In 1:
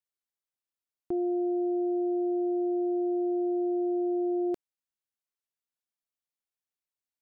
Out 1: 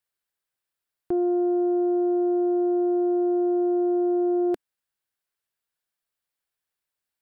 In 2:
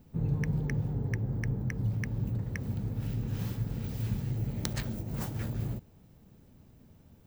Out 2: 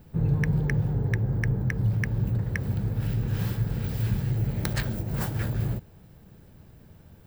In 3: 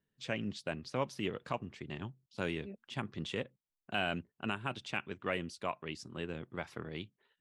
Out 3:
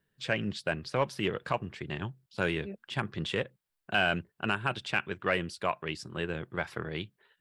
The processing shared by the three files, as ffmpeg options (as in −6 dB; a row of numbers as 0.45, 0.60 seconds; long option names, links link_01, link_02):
-af "aeval=exprs='0.251*sin(PI/2*1.78*val(0)/0.251)':channel_layout=same,equalizer=frequency=250:width_type=o:width=0.33:gain=-8,equalizer=frequency=1600:width_type=o:width=0.33:gain=5,equalizer=frequency=6300:width_type=o:width=0.33:gain=-5,volume=-2dB"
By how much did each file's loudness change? +5.5, +6.0, +6.5 LU